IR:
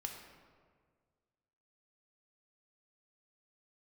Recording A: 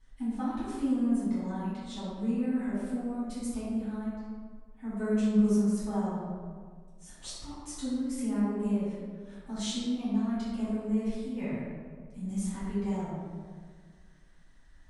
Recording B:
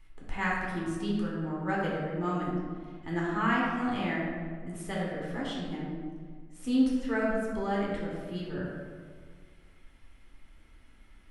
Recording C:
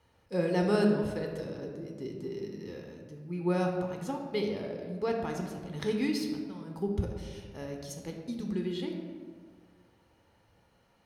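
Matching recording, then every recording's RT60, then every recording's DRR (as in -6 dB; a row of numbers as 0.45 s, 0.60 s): C; 1.7 s, 1.7 s, 1.8 s; -13.5 dB, -5.5 dB, 1.5 dB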